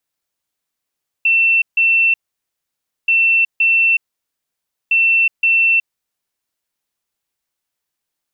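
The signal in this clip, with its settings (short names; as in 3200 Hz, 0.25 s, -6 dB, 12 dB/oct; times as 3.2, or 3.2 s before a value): beep pattern sine 2690 Hz, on 0.37 s, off 0.15 s, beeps 2, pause 0.94 s, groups 3, -10 dBFS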